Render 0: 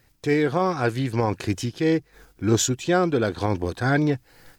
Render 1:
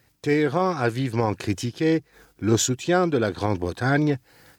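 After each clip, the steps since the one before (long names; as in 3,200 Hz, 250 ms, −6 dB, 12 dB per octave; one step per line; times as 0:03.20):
high-pass filter 69 Hz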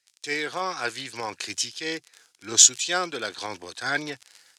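surface crackle 34 per second −30 dBFS
meter weighting curve ITU-R 468
multiband upward and downward expander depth 40%
level −4.5 dB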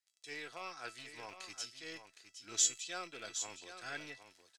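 loose part that buzzes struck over −43 dBFS, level −24 dBFS
tuned comb filter 660 Hz, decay 0.22 s, harmonics all, mix 80%
single-tap delay 764 ms −10 dB
level −5 dB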